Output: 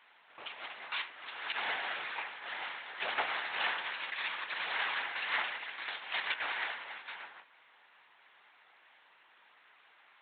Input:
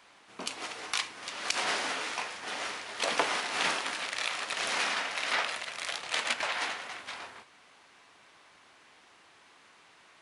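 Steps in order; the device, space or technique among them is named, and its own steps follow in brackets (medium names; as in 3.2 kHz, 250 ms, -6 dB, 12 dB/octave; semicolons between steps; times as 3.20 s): talking toy (LPC vocoder at 8 kHz; high-pass 510 Hz 12 dB/octave; peaking EQ 1.8 kHz +4 dB 0.38 oct); trim -4 dB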